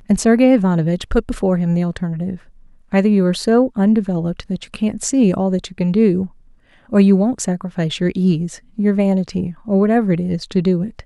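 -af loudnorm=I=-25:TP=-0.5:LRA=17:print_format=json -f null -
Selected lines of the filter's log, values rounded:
"input_i" : "-17.4",
"input_tp" : "-1.6",
"input_lra" : "1.2",
"input_thresh" : "-27.6",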